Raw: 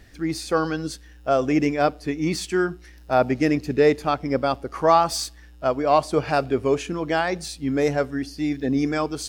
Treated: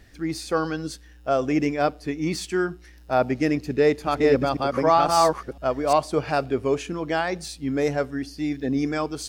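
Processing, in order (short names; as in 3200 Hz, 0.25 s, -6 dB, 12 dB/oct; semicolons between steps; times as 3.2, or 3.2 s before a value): 3.56–5.93 reverse delay 0.505 s, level -0.5 dB; gain -2 dB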